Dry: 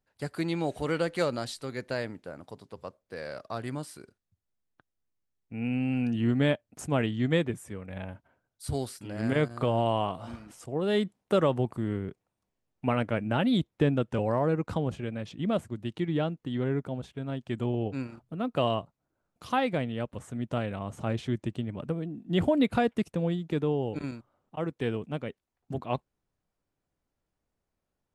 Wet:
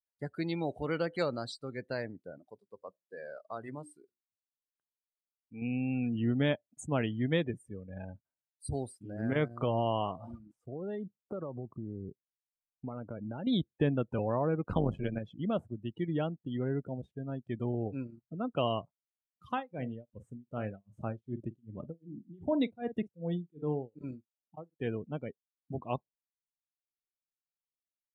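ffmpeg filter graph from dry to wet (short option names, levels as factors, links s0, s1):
-filter_complex "[0:a]asettb=1/sr,asplit=3[s0][s1][s2];[s0]atrim=end=2.384[s3];[s1]atrim=start=2.38:end=5.62,asetpts=PTS-STARTPTS,afade=t=in:d=0.004:c=qsin,afade=t=out:st=3.236:d=0.004:c=qsin,lowshelf=f=170:g=-9,bandreject=f=60:t=h:w=6,bandreject=f=120:t=h:w=6,bandreject=f=180:t=h:w=6,bandreject=f=240:t=h:w=6,bandreject=f=300:t=h:w=6,bandreject=f=360:t=h:w=6[s4];[s2]atrim=start=5.616[s5];[s3][s4]acrossfade=d=0.004:c1=hsin:c2=qsin[s6];[s6][s5]acrossfade=d=0.004:c1=qsin:c2=hsin,asettb=1/sr,asplit=3[s7][s8][s9];[s7]atrim=end=10.384[s10];[s8]atrim=start=10.38:end=13.47,asetpts=PTS-STARTPTS,afade=t=in:d=0.004:c=qsin,afade=t=out:st=3.086:d=0.004:c=qsin,highshelf=f=2400:g=-10.5,acompressor=threshold=0.0282:ratio=6:attack=3.2:release=140:knee=1:detection=peak[s11];[s9]atrim=start=13.466[s12];[s10][s11]acrossfade=d=0.004:c1=hsin:c2=qsin[s13];[s13][s12]acrossfade=d=0.004:c1=qsin:c2=hsin,asettb=1/sr,asplit=3[s14][s15][s16];[s14]atrim=end=14.684[s17];[s15]atrim=start=14.68:end=15.19,asetpts=PTS-STARTPTS,afade=t=in:d=0.004:c=qsin,afade=t=out:st=0.506:d=0.004:c=qsin,acontrast=84,tremolo=f=96:d=0.71[s18];[s16]atrim=start=15.186[s19];[s17][s18]acrossfade=d=0.004:c1=hsin:c2=qsin[s20];[s20][s19]acrossfade=d=0.004:c1=qsin:c2=hsin,asettb=1/sr,asplit=3[s21][s22][s23];[s21]atrim=end=19.494[s24];[s22]atrim=start=19.49:end=24.87,asetpts=PTS-STARTPTS,afade=t=in:d=0.004:c=qsin,afade=t=out:st=5.376:d=0.004:c=qsin,asplit=2[s25][s26];[s26]adelay=46,volume=0.224[s27];[s25][s27]amix=inputs=2:normalize=0,atrim=end_sample=237258,tremolo=f=2.6:d=0.96[s28];[s23]atrim=start=24.866[s29];[s24][s28]acrossfade=d=0.004:c1=hsin:c2=qsin[s30];[s30][s29]acrossfade=d=0.004:c1=qsin:c2=hsin,afftdn=nr=29:nf=-39,highshelf=f=6600:g=10.5,volume=0.631"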